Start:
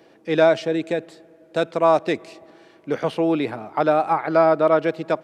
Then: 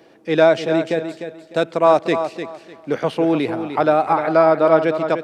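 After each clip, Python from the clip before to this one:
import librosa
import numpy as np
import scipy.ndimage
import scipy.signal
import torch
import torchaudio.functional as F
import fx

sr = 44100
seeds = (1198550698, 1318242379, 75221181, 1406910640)

y = fx.echo_feedback(x, sr, ms=301, feedback_pct=23, wet_db=-9)
y = y * 10.0 ** (2.5 / 20.0)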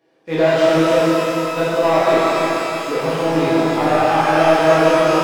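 y = fx.leveller(x, sr, passes=2)
y = fx.rev_shimmer(y, sr, seeds[0], rt60_s=2.9, semitones=12, shimmer_db=-8, drr_db=-10.0)
y = y * 10.0 ** (-13.5 / 20.0)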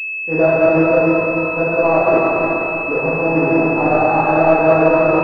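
y = fx.pwm(x, sr, carrier_hz=2600.0)
y = y * 10.0 ** (1.5 / 20.0)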